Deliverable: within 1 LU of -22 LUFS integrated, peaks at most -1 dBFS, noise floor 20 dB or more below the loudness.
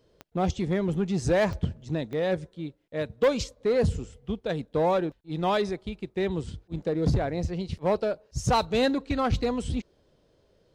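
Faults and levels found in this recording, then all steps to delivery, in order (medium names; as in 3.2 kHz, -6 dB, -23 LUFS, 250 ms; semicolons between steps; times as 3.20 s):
clicks found 4; loudness -28.0 LUFS; peak level -14.0 dBFS; loudness target -22.0 LUFS
-> de-click; trim +6 dB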